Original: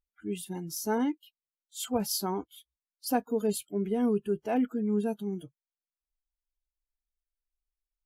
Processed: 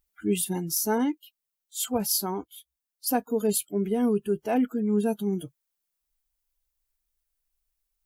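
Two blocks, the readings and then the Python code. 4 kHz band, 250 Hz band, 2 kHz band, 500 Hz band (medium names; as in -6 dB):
+4.5 dB, +3.5 dB, +3.5 dB, +3.5 dB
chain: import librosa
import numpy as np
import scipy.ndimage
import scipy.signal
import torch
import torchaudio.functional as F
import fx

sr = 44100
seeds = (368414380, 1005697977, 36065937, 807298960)

y = fx.high_shelf(x, sr, hz=8400.0, db=10.0)
y = fx.rider(y, sr, range_db=5, speed_s=0.5)
y = F.gain(torch.from_numpy(y), 4.0).numpy()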